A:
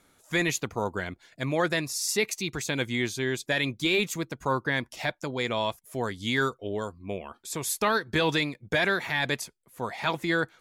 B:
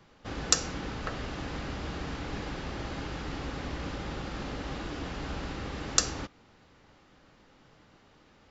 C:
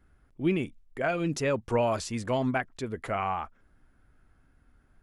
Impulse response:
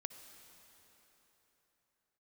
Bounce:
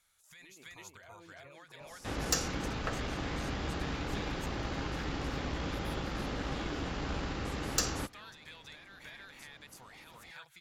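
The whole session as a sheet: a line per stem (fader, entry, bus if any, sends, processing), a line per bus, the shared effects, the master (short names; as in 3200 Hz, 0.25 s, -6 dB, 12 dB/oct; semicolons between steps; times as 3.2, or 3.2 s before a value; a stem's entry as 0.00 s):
-5.5 dB, 0.00 s, bus A, no send, echo send -7 dB, passive tone stack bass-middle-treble 10-0-10; compressor, threshold -36 dBFS, peak gain reduction 10 dB
+2.0 dB, 1.80 s, no bus, no send, no echo send, tube stage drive 23 dB, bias 0.45
-18.5 dB, 0.00 s, bus A, no send, echo send -7 dB, band-pass 1000 Hz, Q 0.9
bus A: 0.0 dB, limiter -46 dBFS, peak gain reduction 17.5 dB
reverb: off
echo: echo 0.322 s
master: dry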